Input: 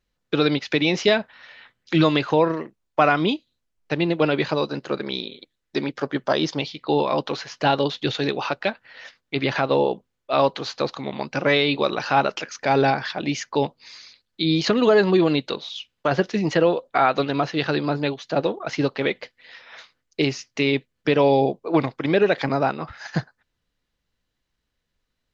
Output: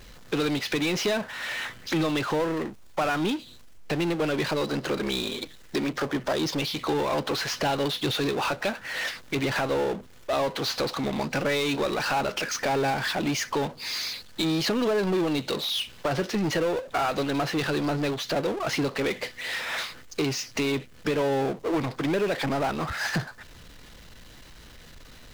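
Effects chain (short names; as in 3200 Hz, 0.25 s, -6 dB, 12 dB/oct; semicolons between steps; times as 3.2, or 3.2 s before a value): compressor 2.5:1, threshold -36 dBFS, peak gain reduction 15.5 dB; power-law curve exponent 0.5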